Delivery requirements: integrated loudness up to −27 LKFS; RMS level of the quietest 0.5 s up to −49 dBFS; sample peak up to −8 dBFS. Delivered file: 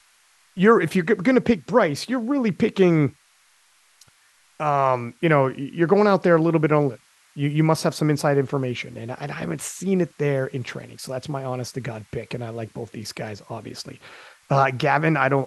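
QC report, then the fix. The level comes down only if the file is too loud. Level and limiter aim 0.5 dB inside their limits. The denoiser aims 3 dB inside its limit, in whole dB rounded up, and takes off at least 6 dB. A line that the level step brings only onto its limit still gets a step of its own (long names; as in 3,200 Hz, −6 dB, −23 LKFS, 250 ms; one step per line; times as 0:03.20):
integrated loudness −22.0 LKFS: out of spec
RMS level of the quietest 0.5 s −59 dBFS: in spec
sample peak −4.0 dBFS: out of spec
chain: level −5.5 dB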